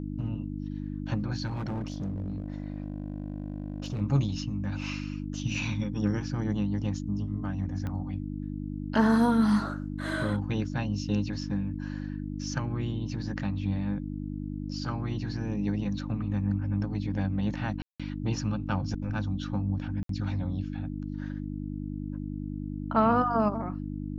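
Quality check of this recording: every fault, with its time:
hum 50 Hz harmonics 6 -35 dBFS
1.46–4.02 s: clipped -29 dBFS
7.87 s: pop -23 dBFS
17.82–18.00 s: dropout 176 ms
20.03–20.09 s: dropout 63 ms

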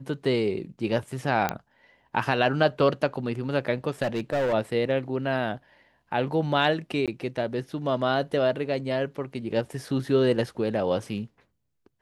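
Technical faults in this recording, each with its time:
1.49 s: pop -10 dBFS
4.03–4.54 s: clipped -22 dBFS
7.06–7.08 s: dropout 17 ms

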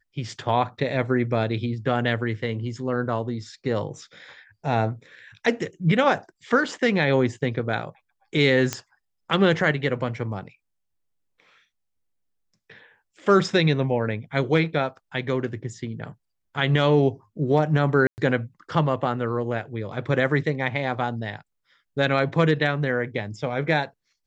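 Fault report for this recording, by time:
8.73 s: pop -10 dBFS
18.07–18.18 s: dropout 109 ms

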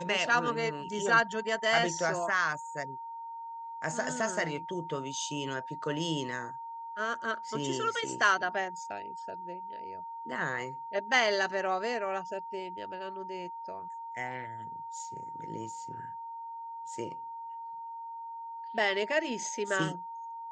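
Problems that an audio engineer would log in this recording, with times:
whine 920 Hz -39 dBFS

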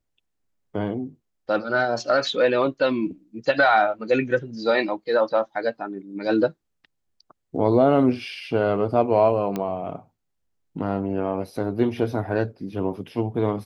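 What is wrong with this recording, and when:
9.56 s: pop -14 dBFS

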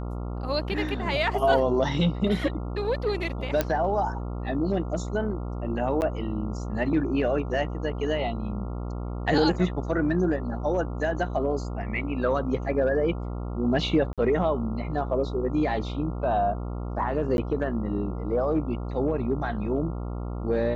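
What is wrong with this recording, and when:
buzz 60 Hz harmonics 23 -32 dBFS
3.61 s: pop -9 dBFS
6.01–6.02 s: dropout 9.4 ms
14.13–14.18 s: dropout 47 ms
17.37–17.38 s: dropout 11 ms

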